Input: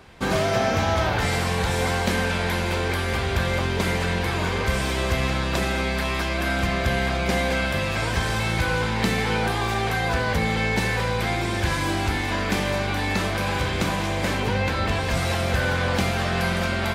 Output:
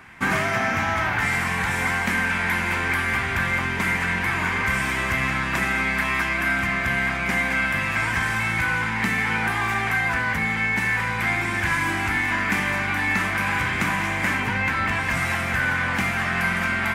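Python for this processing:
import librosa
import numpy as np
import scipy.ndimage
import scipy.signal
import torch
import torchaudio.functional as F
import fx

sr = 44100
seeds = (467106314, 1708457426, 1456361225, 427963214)

y = fx.graphic_eq(x, sr, hz=(125, 250, 500, 1000, 2000, 4000), db=(5, 6, -11, 3, 10, -10))
y = fx.rider(y, sr, range_db=10, speed_s=0.5)
y = fx.low_shelf(y, sr, hz=290.0, db=-10.0)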